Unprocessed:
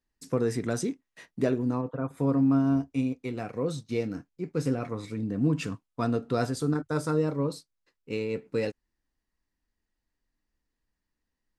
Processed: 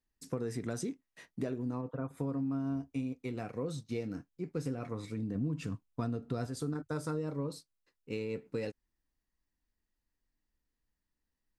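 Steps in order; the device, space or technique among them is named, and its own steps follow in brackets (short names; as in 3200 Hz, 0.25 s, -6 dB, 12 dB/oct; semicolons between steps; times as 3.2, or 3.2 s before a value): 5.35–6.47 low shelf 240 Hz +7.5 dB; ASMR close-microphone chain (low shelf 200 Hz +3 dB; compressor 5:1, threshold -27 dBFS, peak gain reduction 11.5 dB; high shelf 9800 Hz +3.5 dB); gain -5 dB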